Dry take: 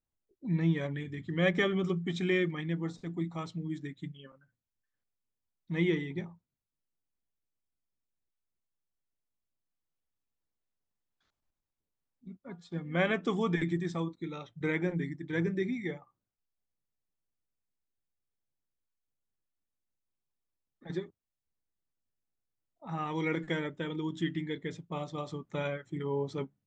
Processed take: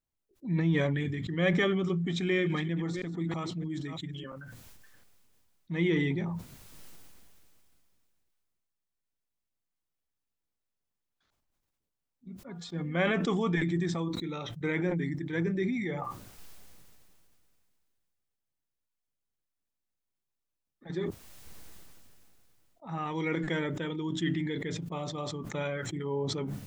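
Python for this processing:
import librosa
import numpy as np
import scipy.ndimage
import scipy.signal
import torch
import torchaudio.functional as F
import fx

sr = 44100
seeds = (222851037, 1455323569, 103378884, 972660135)

y = fx.reverse_delay(x, sr, ms=320, wet_db=-13.5, at=(2.06, 4.24))
y = fx.sustainer(y, sr, db_per_s=21.0)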